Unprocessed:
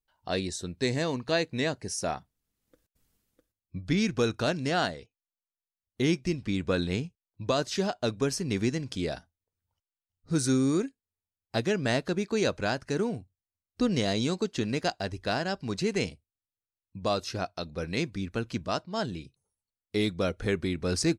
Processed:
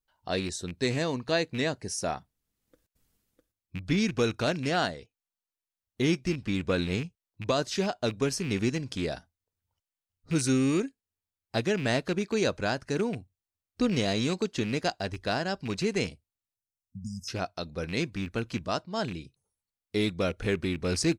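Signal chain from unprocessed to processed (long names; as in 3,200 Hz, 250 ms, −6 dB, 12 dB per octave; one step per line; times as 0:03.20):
loose part that buzzes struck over −33 dBFS, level −29 dBFS
time-frequency box erased 0:16.55–0:17.28, 250–4,900 Hz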